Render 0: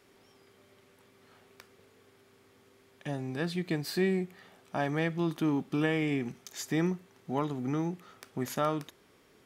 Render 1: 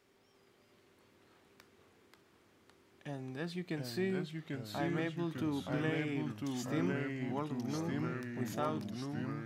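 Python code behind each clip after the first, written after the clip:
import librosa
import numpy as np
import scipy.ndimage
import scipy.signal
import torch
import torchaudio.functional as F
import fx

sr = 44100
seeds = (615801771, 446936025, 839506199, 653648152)

y = fx.peak_eq(x, sr, hz=11000.0, db=-4.5, octaves=0.33)
y = fx.echo_pitch(y, sr, ms=340, semitones=-2, count=3, db_per_echo=-3.0)
y = F.gain(torch.from_numpy(y), -7.5).numpy()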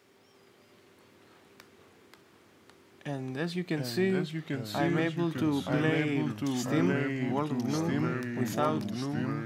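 y = scipy.signal.sosfilt(scipy.signal.butter(2, 81.0, 'highpass', fs=sr, output='sos'), x)
y = F.gain(torch.from_numpy(y), 7.5).numpy()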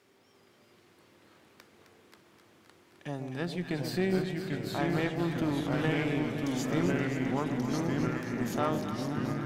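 y = fx.echo_alternate(x, sr, ms=131, hz=800.0, feedback_pct=85, wet_db=-7)
y = fx.tube_stage(y, sr, drive_db=18.0, bias=0.55)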